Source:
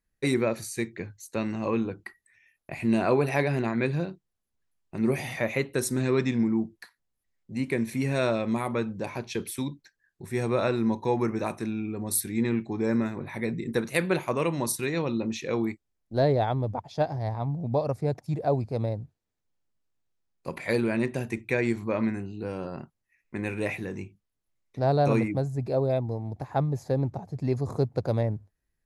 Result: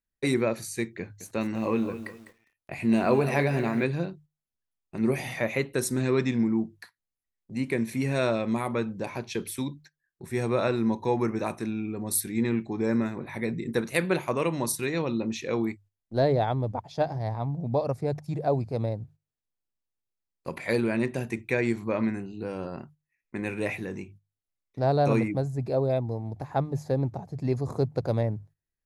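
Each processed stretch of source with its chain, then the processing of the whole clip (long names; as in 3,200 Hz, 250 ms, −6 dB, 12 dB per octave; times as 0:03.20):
0:01.00–0:03.84: double-tracking delay 22 ms −13.5 dB + feedback echo at a low word length 203 ms, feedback 35%, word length 8 bits, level −12 dB
whole clip: mains-hum notches 50/100/150 Hz; noise gate −50 dBFS, range −10 dB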